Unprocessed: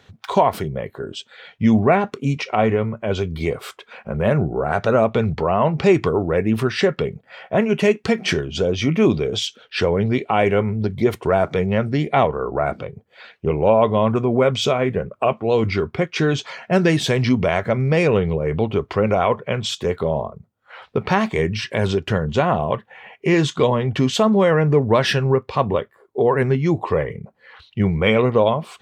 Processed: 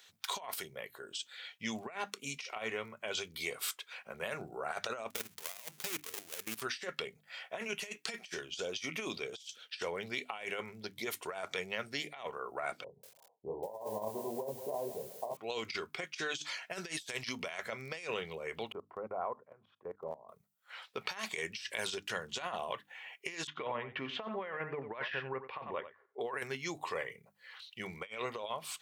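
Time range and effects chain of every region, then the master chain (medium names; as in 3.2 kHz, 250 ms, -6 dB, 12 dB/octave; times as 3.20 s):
5.10–6.62 s: dead-time distortion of 0.28 ms + level held to a coarse grid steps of 19 dB
12.84–15.37 s: steep low-pass 980 Hz 96 dB/octave + doubling 29 ms -5 dB + bit-crushed delay 190 ms, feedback 35%, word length 7-bit, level -13 dB
18.72–20.29 s: low-pass 1.1 kHz 24 dB/octave + level held to a coarse grid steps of 20 dB
23.47–26.21 s: low-pass 2.3 kHz 24 dB/octave + delay 91 ms -13.5 dB
whole clip: differentiator; hum notches 50/100/150/200/250/300 Hz; compressor with a negative ratio -39 dBFS, ratio -0.5; trim +1 dB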